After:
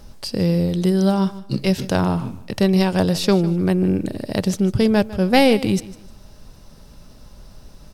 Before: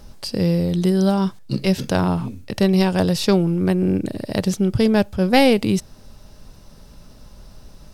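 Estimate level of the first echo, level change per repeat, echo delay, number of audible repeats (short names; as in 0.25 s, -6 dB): -17.5 dB, -11.0 dB, 0.152 s, 2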